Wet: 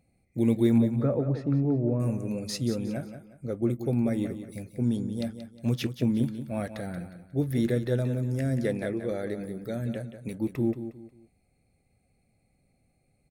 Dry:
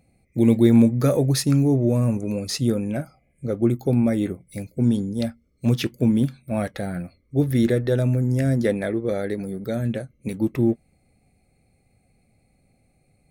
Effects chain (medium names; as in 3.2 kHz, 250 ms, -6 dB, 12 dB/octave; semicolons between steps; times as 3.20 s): 0.78–2.00 s: low-pass 1.3 kHz 12 dB/octave; on a send: feedback delay 180 ms, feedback 32%, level -10.5 dB; on the sum: trim -7 dB